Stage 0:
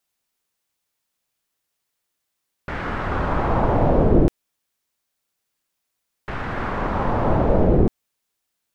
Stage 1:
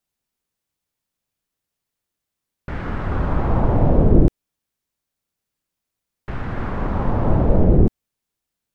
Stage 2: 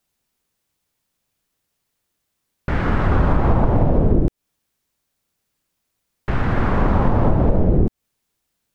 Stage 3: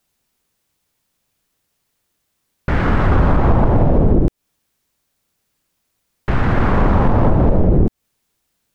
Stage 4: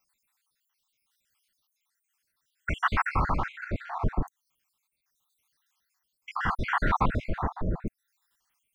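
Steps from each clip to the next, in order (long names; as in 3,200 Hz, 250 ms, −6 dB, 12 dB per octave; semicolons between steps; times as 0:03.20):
low-shelf EQ 340 Hz +10.5 dB; level −5.5 dB
downward compressor 16 to 1, threshold −18 dBFS, peak gain reduction 13 dB; level +7.5 dB
soft clipping −8.5 dBFS, distortion −19 dB; level +4.5 dB
time-frequency cells dropped at random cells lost 68%; amplitude tremolo 0.72 Hz, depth 35%; low shelf with overshoot 760 Hz −11 dB, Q 1.5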